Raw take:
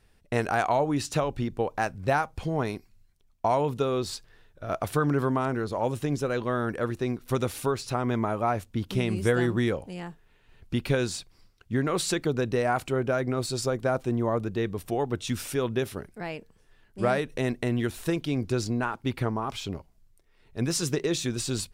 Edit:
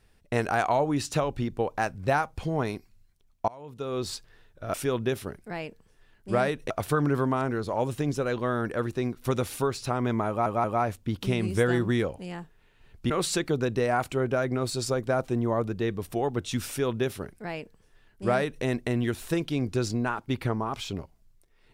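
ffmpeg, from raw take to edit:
ffmpeg -i in.wav -filter_complex "[0:a]asplit=7[link_01][link_02][link_03][link_04][link_05][link_06][link_07];[link_01]atrim=end=3.48,asetpts=PTS-STARTPTS,afade=type=out:start_time=3.476:duration=0.004:curve=hsin:silence=0.0668344[link_08];[link_02]atrim=start=3.48:end=4.742,asetpts=PTS-STARTPTS,afade=type=in:duration=0.58:curve=qua:silence=0.0668344[link_09];[link_03]atrim=start=15.438:end=17.402[link_10];[link_04]atrim=start=4.738:end=8.502[link_11];[link_05]atrim=start=8.318:end=8.502[link_12];[link_06]atrim=start=8.318:end=10.782[link_13];[link_07]atrim=start=11.858[link_14];[link_08][link_09]concat=n=2:v=0:a=1[link_15];[link_15][link_10]acrossfade=duration=0.004:curve1=hsin:curve2=hsin[link_16];[link_16][link_11]acrossfade=duration=0.004:curve1=hsin:curve2=hsin[link_17];[link_17][link_12]acrossfade=duration=0.004:curve1=hsin:curve2=hsin[link_18];[link_18][link_13]acrossfade=duration=0.004:curve1=hsin:curve2=hsin[link_19];[link_19][link_14]acrossfade=duration=0.004:curve1=hsin:curve2=hsin" out.wav

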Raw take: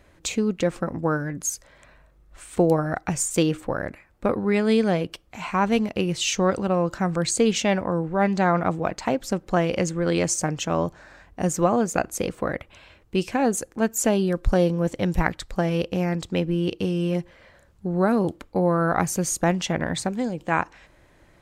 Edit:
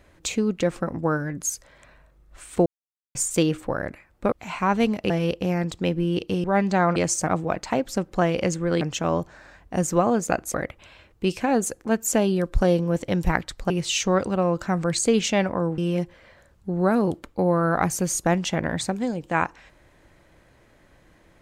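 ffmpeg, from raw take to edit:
ffmpeg -i in.wav -filter_complex "[0:a]asplit=12[link_01][link_02][link_03][link_04][link_05][link_06][link_07][link_08][link_09][link_10][link_11][link_12];[link_01]atrim=end=2.66,asetpts=PTS-STARTPTS,afade=type=out:start_time=2.656:duration=0.004:curve=hsin[link_13];[link_02]atrim=start=2.66:end=3.15,asetpts=PTS-STARTPTS,volume=0[link_14];[link_03]atrim=start=3.15:end=4.322,asetpts=PTS-STARTPTS,afade=type=in:duration=0.004:curve=hsin[link_15];[link_04]atrim=start=5.238:end=6.022[link_16];[link_05]atrim=start=15.608:end=16.952[link_17];[link_06]atrim=start=8.098:end=8.622[link_18];[link_07]atrim=start=10.158:end=10.472[link_19];[link_08]atrim=start=8.618:end=10.162[link_20];[link_09]atrim=start=10.468:end=12.202[link_21];[link_10]atrim=start=12.448:end=15.612[link_22];[link_11]atrim=start=6.018:end=8.102[link_23];[link_12]atrim=start=16.948[link_24];[link_13][link_14][link_15]concat=n=3:v=0:a=1[link_25];[link_25][link_16]acrossfade=duration=0.004:curve1=hsin:curve2=hsin[link_26];[link_26][link_17]acrossfade=duration=0.004:curve1=hsin:curve2=hsin[link_27];[link_27][link_18]acrossfade=duration=0.004:curve1=hsin:curve2=hsin[link_28];[link_28][link_19]acrossfade=duration=0.004:curve1=hsin:curve2=hsin[link_29];[link_29][link_20]acrossfade=duration=0.004:curve1=hsin:curve2=hsin[link_30];[link_30][link_21]acrossfade=duration=0.004:curve1=hsin:curve2=hsin[link_31];[link_31][link_22]acrossfade=duration=0.004:curve1=hsin:curve2=hsin[link_32];[link_32][link_23]acrossfade=duration=0.004:curve1=hsin:curve2=hsin[link_33];[link_33][link_24]acrossfade=duration=0.004:curve1=hsin:curve2=hsin" out.wav

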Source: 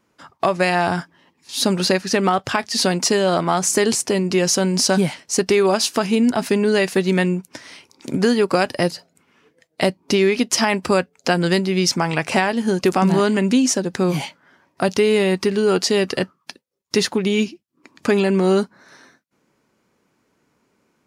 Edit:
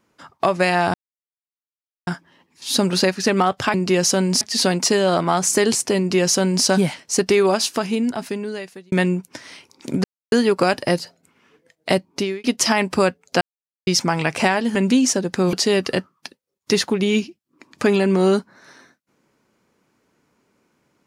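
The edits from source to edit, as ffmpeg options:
ffmpeg -i in.wav -filter_complex "[0:a]asplit=11[link_01][link_02][link_03][link_04][link_05][link_06][link_07][link_08][link_09][link_10][link_11];[link_01]atrim=end=0.94,asetpts=PTS-STARTPTS,afade=type=out:start_time=0.936:duration=0.004:curve=hsin,apad=pad_dur=1.13[link_12];[link_02]atrim=start=0.94:end=2.612,asetpts=PTS-STARTPTS,afade=type=in:duration=0.004:curve=hsin[link_13];[link_03]atrim=start=4.178:end=4.852[link_14];[link_04]atrim=start=2.608:end=7.12,asetpts=PTS-STARTPTS,afade=type=out:start_time=2.992:duration=1.52[link_15];[link_05]atrim=start=7.12:end=8.24,asetpts=PTS-STARTPTS,afade=type=in:duration=0.004:curve=hsin,afade=type=out:start_time=1.116:duration=0.004:curve=hsin,apad=pad_dur=0.28[link_16];[link_06]atrim=start=8.24:end=10.36,asetpts=PTS-STARTPTS,afade=type=in:duration=0.004:curve=hsin,afade=type=out:start_time=1.73:duration=0.39[link_17];[link_07]atrim=start=10.36:end=11.33,asetpts=PTS-STARTPTS,afade=type=in:duration=0.004:curve=hsin,afade=type=out:start_time=0.966:duration=0.004:curve=hsin[link_18];[link_08]atrim=start=11.33:end=11.79,asetpts=PTS-STARTPTS,volume=0[link_19];[link_09]atrim=start=11.79:end=12.672,asetpts=PTS-STARTPTS,afade=type=in:duration=0.004:curve=hsin[link_20];[link_10]atrim=start=13.358:end=14.142[link_21];[link_11]atrim=start=15.768[link_22];[link_12][link_13]concat=n=2:v=0:a=1[link_23];[link_23][link_14]acrossfade=duration=0.004:curve1=hsin:curve2=hsin[link_24];[link_15][link_16][link_17][link_18][link_19][link_20]concat=n=6:v=0:a=1[link_25];[link_24][link_25]acrossfade=duration=0.004:curve1=hsin:curve2=hsin[link_26];[link_26][link_21]acrossfade=duration=0.004:curve1=hsin:curve2=hsin[link_27];[link_27][link_22]acrossfade=duration=0.004:curve1=hsin:curve2=hsin" out.wav

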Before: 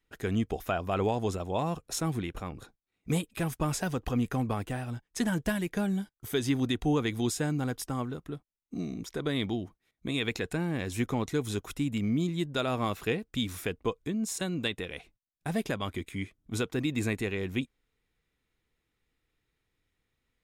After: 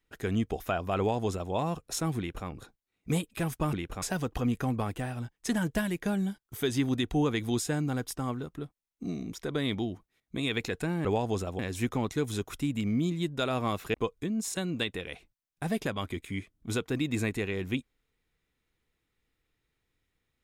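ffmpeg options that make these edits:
ffmpeg -i in.wav -filter_complex "[0:a]asplit=6[link_01][link_02][link_03][link_04][link_05][link_06];[link_01]atrim=end=3.732[link_07];[link_02]atrim=start=2.178:end=2.472[link_08];[link_03]atrim=start=3.728:end=10.762[link_09];[link_04]atrim=start=0.978:end=1.522[link_10];[link_05]atrim=start=10.758:end=13.112[link_11];[link_06]atrim=start=13.778[link_12];[link_07][link_08]acrossfade=duration=0.004:curve1=hsin:curve2=hsin[link_13];[link_13][link_09]acrossfade=duration=0.004:curve1=hsin:curve2=hsin[link_14];[link_14][link_10]acrossfade=duration=0.004:curve1=hsin:curve2=hsin[link_15];[link_15][link_11]acrossfade=duration=0.004:curve1=hsin:curve2=hsin[link_16];[link_16][link_12]acrossfade=duration=0.004:curve1=hsin:curve2=hsin" out.wav

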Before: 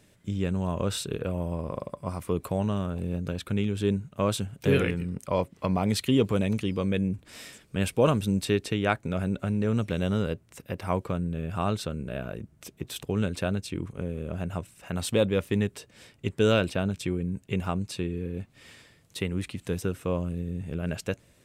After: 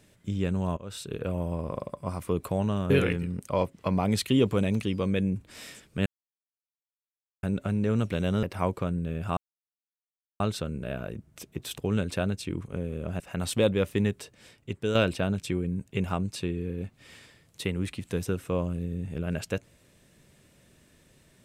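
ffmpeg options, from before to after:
ffmpeg -i in.wav -filter_complex "[0:a]asplit=9[link_01][link_02][link_03][link_04][link_05][link_06][link_07][link_08][link_09];[link_01]atrim=end=0.77,asetpts=PTS-STARTPTS,afade=type=out:start_time=0.766:duration=0.004:curve=hsin:silence=0.0794328[link_10];[link_02]atrim=start=0.77:end=2.902,asetpts=PTS-STARTPTS,afade=type=in:duration=0.54:silence=0.0794328[link_11];[link_03]atrim=start=4.678:end=7.84,asetpts=PTS-STARTPTS,afade=type=out:start_time=3.158:duration=0.004:curve=hsin[link_12];[link_04]atrim=start=7.84:end=9.21,asetpts=PTS-STARTPTS,volume=0[link_13];[link_05]atrim=start=9.21:end=10.212,asetpts=PTS-STARTPTS,afade=type=in:duration=0.004:curve=hsin[link_14];[link_06]atrim=start=10.708:end=11.65,asetpts=PTS-STARTPTS,afade=type=out:start_time=0.938:duration=0.004:curve=hsin,apad=pad_dur=1.03[link_15];[link_07]atrim=start=11.65:end=14.452,asetpts=PTS-STARTPTS,afade=type=in:duration=0.004:curve=hsin[link_16];[link_08]atrim=start=14.758:end=16.51,asetpts=PTS-STARTPTS,afade=type=out:start_time=0.962:duration=0.79:silence=0.446684[link_17];[link_09]atrim=start=16.51,asetpts=PTS-STARTPTS,afade=type=in:duration=0.004:curve=hsin:silence=0.446684[link_18];[link_10][link_11]concat=n=2:v=0:a=1[link_19];[link_12][link_13][link_14]concat=n=3:v=0:a=1[link_20];[link_19][link_20]acrossfade=duration=0.004:curve1=hsin:curve2=hsin[link_21];[link_15][link_16]concat=n=2:v=0:a=1[link_22];[link_21][link_22]acrossfade=duration=0.004:curve1=hsin:curve2=hsin[link_23];[link_17][link_18]concat=n=2:v=0:a=1[link_24];[link_23][link_24]acrossfade=duration=0.004:curve1=hsin:curve2=hsin" out.wav

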